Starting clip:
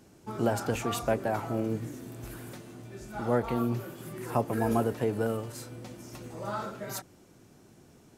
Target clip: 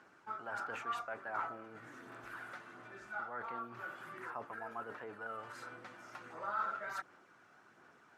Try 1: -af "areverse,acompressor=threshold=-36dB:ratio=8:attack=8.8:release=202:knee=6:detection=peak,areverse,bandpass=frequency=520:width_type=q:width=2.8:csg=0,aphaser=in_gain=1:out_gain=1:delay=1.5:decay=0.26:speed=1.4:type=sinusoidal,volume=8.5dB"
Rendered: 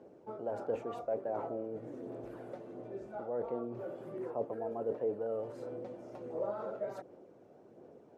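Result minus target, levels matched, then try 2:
500 Hz band +10.0 dB
-af "areverse,acompressor=threshold=-36dB:ratio=8:attack=8.8:release=202:knee=6:detection=peak,areverse,bandpass=frequency=1400:width_type=q:width=2.8:csg=0,aphaser=in_gain=1:out_gain=1:delay=1.5:decay=0.26:speed=1.4:type=sinusoidal,volume=8.5dB"

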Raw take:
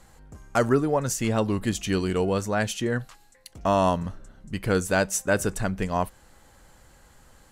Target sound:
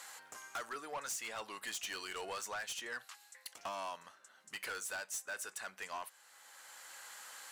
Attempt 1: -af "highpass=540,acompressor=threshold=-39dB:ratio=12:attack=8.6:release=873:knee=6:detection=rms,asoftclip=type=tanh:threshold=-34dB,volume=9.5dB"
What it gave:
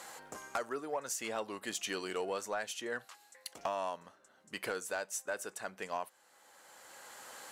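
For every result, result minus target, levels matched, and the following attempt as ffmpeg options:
soft clipping: distortion −11 dB; 500 Hz band +6.5 dB
-af "highpass=540,acompressor=threshold=-39dB:ratio=12:attack=8.6:release=873:knee=6:detection=rms,asoftclip=type=tanh:threshold=-45.5dB,volume=9.5dB"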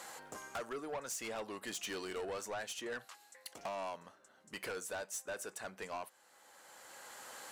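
500 Hz band +6.5 dB
-af "highpass=1200,acompressor=threshold=-39dB:ratio=12:attack=8.6:release=873:knee=6:detection=rms,asoftclip=type=tanh:threshold=-45.5dB,volume=9.5dB"

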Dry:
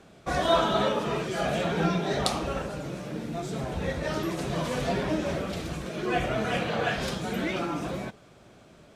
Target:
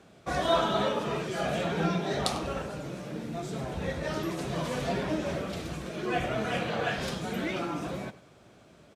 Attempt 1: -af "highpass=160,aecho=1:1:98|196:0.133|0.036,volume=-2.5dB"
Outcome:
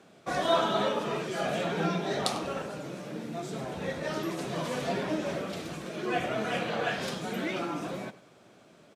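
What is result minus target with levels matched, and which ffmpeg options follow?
125 Hz band −3.0 dB
-af "highpass=52,aecho=1:1:98|196:0.133|0.036,volume=-2.5dB"

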